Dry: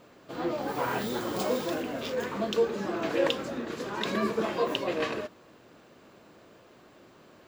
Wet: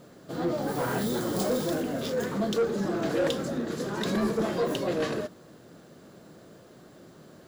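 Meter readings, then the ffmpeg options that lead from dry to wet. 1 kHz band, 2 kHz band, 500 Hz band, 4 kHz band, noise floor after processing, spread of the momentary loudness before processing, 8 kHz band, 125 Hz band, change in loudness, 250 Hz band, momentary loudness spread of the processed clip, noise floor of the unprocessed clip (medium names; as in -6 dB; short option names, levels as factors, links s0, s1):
-1.5 dB, -1.5 dB, +1.0 dB, -1.5 dB, -52 dBFS, 7 LU, +5.0 dB, +7.0 dB, +1.5 dB, +4.0 dB, 5 LU, -56 dBFS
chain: -af "equalizer=f=160:t=o:w=0.67:g=7,equalizer=f=1000:t=o:w=0.67:g=-6,equalizer=f=2500:t=o:w=0.67:g=-9,equalizer=f=10000:t=o:w=0.67:g=6,asoftclip=type=tanh:threshold=0.0631,volume=1.58"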